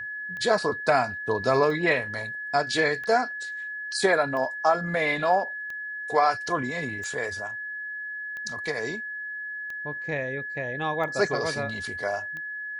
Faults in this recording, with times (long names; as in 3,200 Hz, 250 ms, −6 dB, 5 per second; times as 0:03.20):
scratch tick 45 rpm −25 dBFS
whistle 1,700 Hz −32 dBFS
0:03.04: drop-out 2.7 ms